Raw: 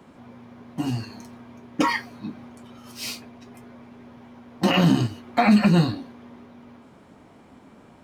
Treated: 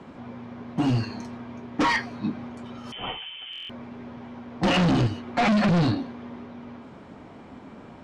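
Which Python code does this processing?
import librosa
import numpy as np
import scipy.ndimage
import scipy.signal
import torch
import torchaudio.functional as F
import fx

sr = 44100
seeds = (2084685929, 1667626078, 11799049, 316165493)

y = np.clip(x, -10.0 ** (-24.5 / 20.0), 10.0 ** (-24.5 / 20.0))
y = fx.air_absorb(y, sr, metres=93.0)
y = fx.freq_invert(y, sr, carrier_hz=3300, at=(2.92, 3.57))
y = fx.buffer_glitch(y, sr, at_s=(3.51,), block=1024, repeats=7)
y = F.gain(torch.from_numpy(y), 6.0).numpy()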